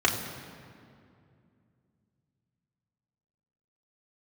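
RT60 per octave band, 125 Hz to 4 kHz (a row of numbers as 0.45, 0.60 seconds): 3.7, 3.4, 2.6, 2.3, 2.0, 1.5 seconds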